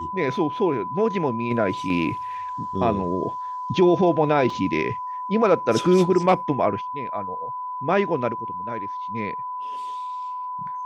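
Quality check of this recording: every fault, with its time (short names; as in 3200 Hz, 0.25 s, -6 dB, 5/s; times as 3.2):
tone 1000 Hz -28 dBFS
4.5 gap 2.8 ms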